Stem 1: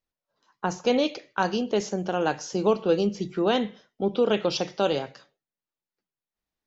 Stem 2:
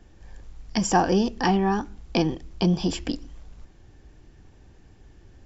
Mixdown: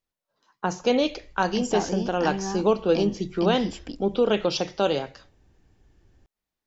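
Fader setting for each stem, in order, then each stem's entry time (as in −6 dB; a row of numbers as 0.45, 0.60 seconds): +1.0, −8.5 decibels; 0.00, 0.80 seconds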